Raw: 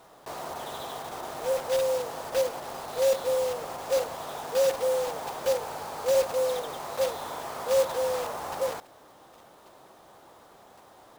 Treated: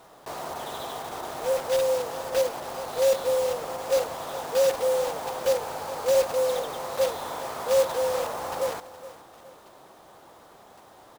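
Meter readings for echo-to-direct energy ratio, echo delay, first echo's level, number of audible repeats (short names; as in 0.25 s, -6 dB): -15.5 dB, 0.417 s, -16.0 dB, 2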